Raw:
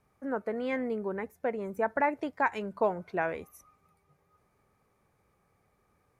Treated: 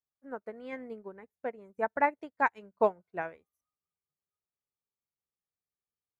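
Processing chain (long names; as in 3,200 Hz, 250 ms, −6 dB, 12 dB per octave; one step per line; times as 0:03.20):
expander for the loud parts 2.5 to 1, over −47 dBFS
level +3 dB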